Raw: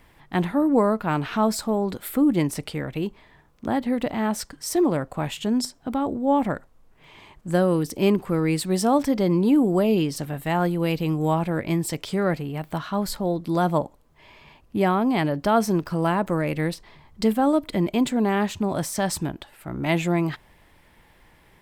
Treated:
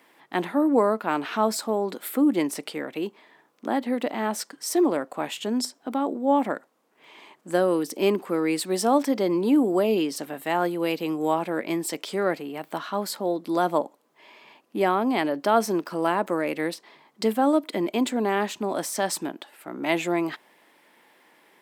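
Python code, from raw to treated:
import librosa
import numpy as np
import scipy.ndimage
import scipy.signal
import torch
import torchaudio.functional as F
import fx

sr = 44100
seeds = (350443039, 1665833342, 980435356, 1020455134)

y = scipy.signal.sosfilt(scipy.signal.butter(4, 250.0, 'highpass', fs=sr, output='sos'), x)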